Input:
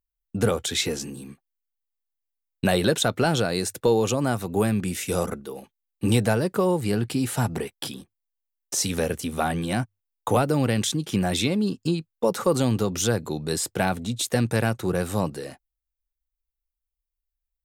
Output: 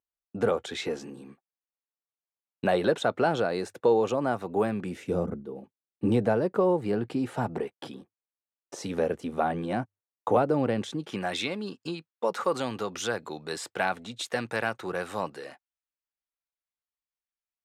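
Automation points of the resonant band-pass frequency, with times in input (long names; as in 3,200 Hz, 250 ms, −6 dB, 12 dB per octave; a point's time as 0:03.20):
resonant band-pass, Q 0.65
0:04.83 720 Hz
0:05.30 180 Hz
0:06.46 560 Hz
0:10.86 560 Hz
0:11.28 1,400 Hz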